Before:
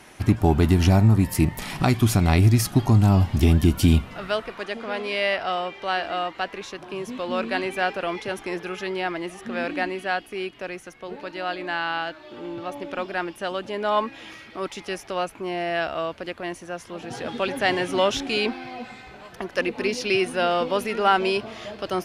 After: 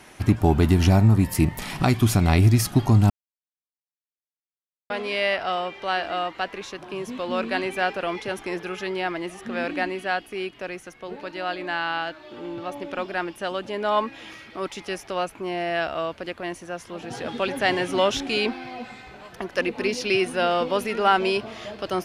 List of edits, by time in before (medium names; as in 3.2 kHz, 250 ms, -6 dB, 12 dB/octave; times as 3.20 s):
3.10–4.90 s: mute